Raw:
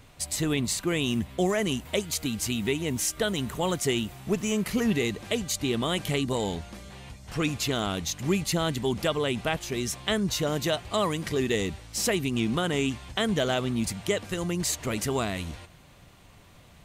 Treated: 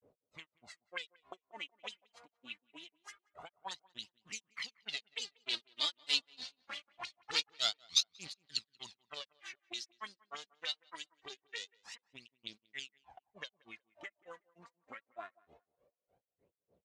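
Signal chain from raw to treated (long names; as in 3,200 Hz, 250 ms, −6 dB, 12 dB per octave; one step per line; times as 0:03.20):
source passing by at 0:06.92, 7 m/s, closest 5.4 metres
low-pass filter 8,400 Hz
in parallel at −6.5 dB: gain into a clipping stage and back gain 30 dB
on the sum: harmonic generator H 6 −15 dB, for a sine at −13.5 dBFS
phase shifter 0.24 Hz, delay 4.4 ms, feedback 65%
granular cloud 165 ms, grains 3.3 per second, pitch spread up and down by 0 semitones
envelope filter 450–4,400 Hz, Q 4, up, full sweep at −36.5 dBFS
on a send: tape delay 184 ms, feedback 31%, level −22 dB, low-pass 1,400 Hz
on the sum: level +11 dB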